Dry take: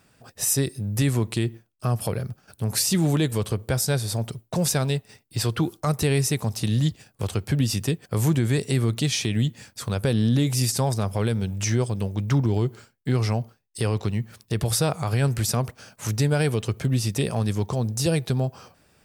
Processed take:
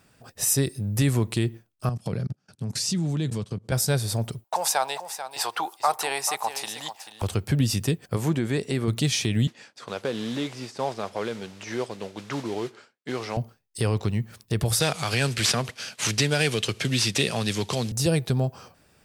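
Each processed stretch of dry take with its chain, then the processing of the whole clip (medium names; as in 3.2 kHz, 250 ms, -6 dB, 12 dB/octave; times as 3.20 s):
1.89–3.72 s: tone controls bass +9 dB, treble +5 dB + level held to a coarse grid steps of 24 dB + Chebyshev band-pass 160–5900 Hz
4.44–7.22 s: resonant high-pass 830 Hz, resonance Q 5 + delay 439 ms -11 dB
8.16–8.88 s: low-pass 3.8 kHz 6 dB/octave + peaking EQ 110 Hz -9 dB 0.93 oct
9.47–13.37 s: de-esser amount 80% + modulation noise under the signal 19 dB + band-pass 360–5100 Hz
14.80–17.92 s: CVSD coder 64 kbps + frequency weighting D + three bands compressed up and down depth 40%
whole clip: none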